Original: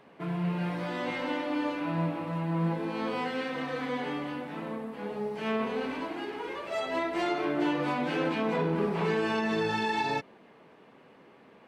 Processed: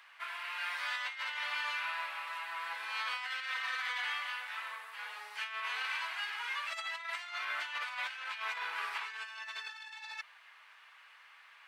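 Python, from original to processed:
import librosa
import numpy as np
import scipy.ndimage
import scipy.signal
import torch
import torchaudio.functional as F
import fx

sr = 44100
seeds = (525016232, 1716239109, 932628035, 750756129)

y = scipy.signal.sosfilt(scipy.signal.butter(4, 1300.0, 'highpass', fs=sr, output='sos'), x)
y = fx.over_compress(y, sr, threshold_db=-42.0, ratio=-0.5)
y = y * 10.0 ** (4.0 / 20.0)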